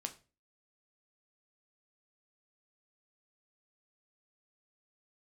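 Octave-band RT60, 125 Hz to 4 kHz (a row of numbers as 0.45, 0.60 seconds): 0.45, 0.40, 0.35, 0.30, 0.30, 0.30 seconds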